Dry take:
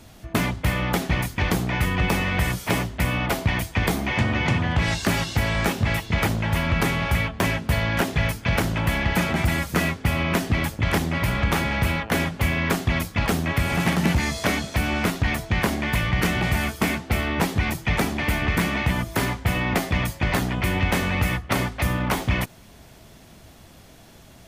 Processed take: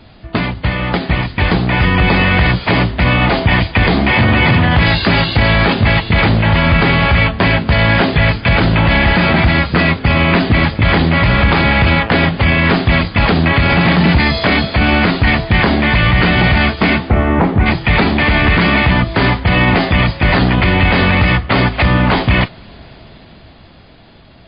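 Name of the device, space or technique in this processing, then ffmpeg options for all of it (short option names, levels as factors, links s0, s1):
low-bitrate web radio: -filter_complex "[0:a]asplit=3[s0][s1][s2];[s0]afade=t=out:st=17.09:d=0.02[s3];[s1]lowpass=1300,afade=t=in:st=17.09:d=0.02,afade=t=out:st=17.65:d=0.02[s4];[s2]afade=t=in:st=17.65:d=0.02[s5];[s3][s4][s5]amix=inputs=3:normalize=0,dynaudnorm=f=160:g=21:m=3.16,alimiter=limit=0.355:level=0:latency=1:release=10,volume=2.11" -ar 11025 -c:a libmp3lame -b:a 24k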